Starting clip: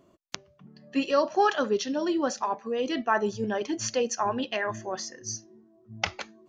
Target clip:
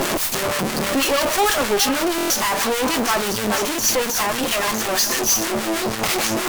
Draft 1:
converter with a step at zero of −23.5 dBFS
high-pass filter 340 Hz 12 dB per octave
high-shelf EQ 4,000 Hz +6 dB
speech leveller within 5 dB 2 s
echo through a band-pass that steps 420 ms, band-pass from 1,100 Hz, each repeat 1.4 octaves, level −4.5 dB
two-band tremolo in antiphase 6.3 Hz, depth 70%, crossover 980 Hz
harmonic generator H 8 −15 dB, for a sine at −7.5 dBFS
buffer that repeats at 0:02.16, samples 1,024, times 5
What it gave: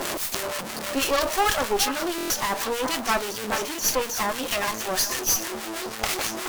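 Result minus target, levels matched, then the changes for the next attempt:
250 Hz band −3.0 dB; converter with a step at zero: distortion −4 dB
change: converter with a step at zero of −15.5 dBFS
change: high-pass filter 170 Hz 12 dB per octave

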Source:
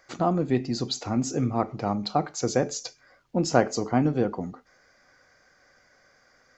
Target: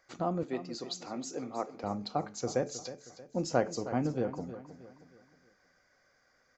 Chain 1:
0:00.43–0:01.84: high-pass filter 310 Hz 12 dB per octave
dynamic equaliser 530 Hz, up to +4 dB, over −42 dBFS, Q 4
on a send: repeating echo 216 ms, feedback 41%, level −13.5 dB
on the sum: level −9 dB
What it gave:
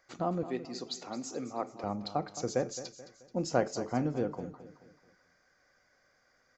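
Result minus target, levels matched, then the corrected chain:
echo 99 ms early
0:00.43–0:01.84: high-pass filter 310 Hz 12 dB per octave
dynamic equaliser 530 Hz, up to +4 dB, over −42 dBFS, Q 4
on a send: repeating echo 315 ms, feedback 41%, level −13.5 dB
on the sum: level −9 dB

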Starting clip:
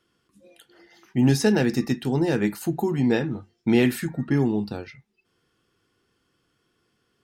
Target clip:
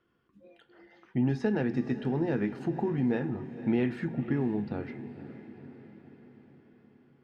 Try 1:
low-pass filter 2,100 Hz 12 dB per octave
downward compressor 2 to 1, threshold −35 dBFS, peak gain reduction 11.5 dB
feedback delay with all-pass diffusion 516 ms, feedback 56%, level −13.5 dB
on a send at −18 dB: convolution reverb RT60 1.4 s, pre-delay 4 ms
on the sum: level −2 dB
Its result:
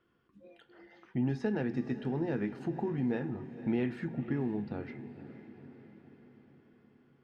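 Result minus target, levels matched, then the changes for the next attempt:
downward compressor: peak gain reduction +4 dB
change: downward compressor 2 to 1, threshold −27 dBFS, peak gain reduction 7.5 dB

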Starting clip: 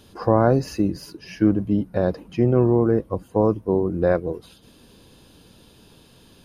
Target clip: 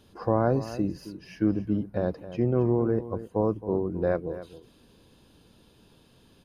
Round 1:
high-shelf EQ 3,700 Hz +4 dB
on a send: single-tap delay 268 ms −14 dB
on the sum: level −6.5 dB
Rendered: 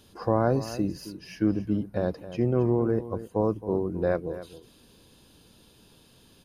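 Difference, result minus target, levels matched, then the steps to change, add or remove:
8,000 Hz band +6.5 dB
change: high-shelf EQ 3,700 Hz −4.5 dB

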